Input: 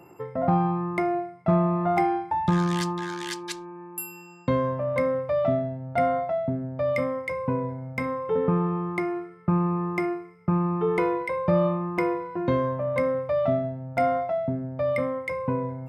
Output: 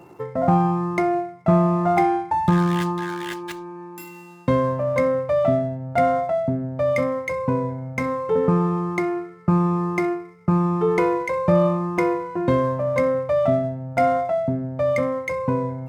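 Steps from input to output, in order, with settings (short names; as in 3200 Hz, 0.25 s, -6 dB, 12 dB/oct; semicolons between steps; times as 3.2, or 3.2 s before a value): median filter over 9 samples; gain +4.5 dB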